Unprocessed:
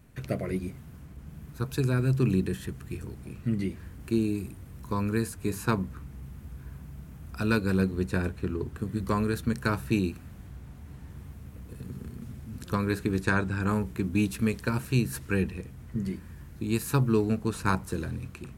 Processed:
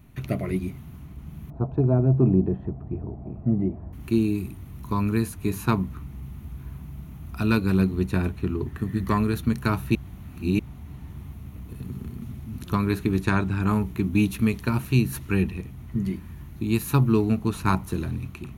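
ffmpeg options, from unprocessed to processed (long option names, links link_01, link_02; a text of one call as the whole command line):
ffmpeg -i in.wav -filter_complex "[0:a]asettb=1/sr,asplit=3[link_01][link_02][link_03];[link_01]atrim=end=1.504[link_04];[link_02]atrim=start=1.5:end=3.93,asetpts=PTS-STARTPTS,afade=type=in:duration=0.004:curve=qsin,afade=type=out:start_time=2.426:duration=0.004:curve=qsin,lowpass=frequency=680:width_type=q:width=4.3[link_05];[link_03]atrim=start=3.926[link_06];[link_04][link_05]acrossfade=duration=0.004:curve1=hsin:curve2=qsin[link_07];[link_07][link_06]acrossfade=duration=0.004:curve1=qsin:curve2=hsin,asettb=1/sr,asplit=3[link_08][link_09][link_10];[link_08]atrim=end=8.664[link_11];[link_09]atrim=start=8.66:end=9.18,asetpts=PTS-STARTPTS,afade=type=in:duration=0.004:curve=qsin,afade=type=out:start_time=0.516:duration=0.004:curve=qsin,equalizer=frequency=1800:width_type=o:width=0.24:gain=13.5[link_12];[link_10]atrim=start=9.176[link_13];[link_11][link_12]acrossfade=duration=0.004:curve1=hsin:curve2=qsin[link_14];[link_14][link_13]acrossfade=duration=0.004:curve1=qsin:curve2=hsin,asplit=3[link_15][link_16][link_17];[link_15]atrim=end=9.952[link_18];[link_16]atrim=start=9.948:end=10.592,asetpts=PTS-STARTPTS,areverse[link_19];[link_17]atrim=start=10.588[link_20];[link_18][link_19]acrossfade=duration=0.004:curve1=hsin:curve2=hsin[link_21];[link_21][link_20]acrossfade=duration=0.004:curve1=hsin:curve2=hsin,equalizer=frequency=500:width_type=o:width=0.33:gain=-11,equalizer=frequency=1600:width_type=o:width=0.33:gain=-8,equalizer=frequency=5000:width_type=o:width=0.33:gain=-8,equalizer=frequency=8000:width_type=o:width=0.33:gain=-12,volume=5dB" out.wav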